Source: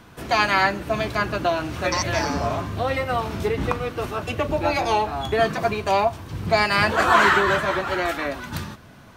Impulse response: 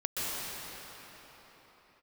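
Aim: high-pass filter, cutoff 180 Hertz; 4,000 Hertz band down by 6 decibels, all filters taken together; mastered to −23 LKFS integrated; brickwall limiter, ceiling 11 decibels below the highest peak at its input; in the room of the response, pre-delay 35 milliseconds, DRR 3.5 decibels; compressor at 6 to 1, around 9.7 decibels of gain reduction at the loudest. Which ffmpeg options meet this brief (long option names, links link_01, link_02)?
-filter_complex "[0:a]highpass=180,equalizer=frequency=4000:width_type=o:gain=-8,acompressor=threshold=-23dB:ratio=6,alimiter=limit=-21.5dB:level=0:latency=1,asplit=2[link_01][link_02];[1:a]atrim=start_sample=2205,adelay=35[link_03];[link_02][link_03]afir=irnorm=-1:irlink=0,volume=-12dB[link_04];[link_01][link_04]amix=inputs=2:normalize=0,volume=6.5dB"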